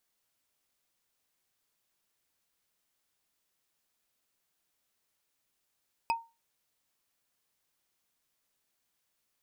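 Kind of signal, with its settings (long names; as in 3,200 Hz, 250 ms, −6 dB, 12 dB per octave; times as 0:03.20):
struck wood, lowest mode 919 Hz, decay 0.27 s, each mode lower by 5 dB, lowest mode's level −22.5 dB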